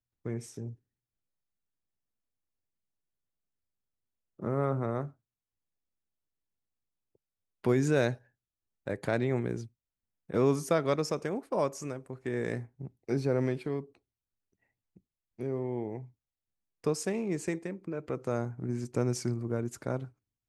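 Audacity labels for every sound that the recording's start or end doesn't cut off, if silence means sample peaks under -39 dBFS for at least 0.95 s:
4.400000	5.080000	sound
7.640000	13.810000	sound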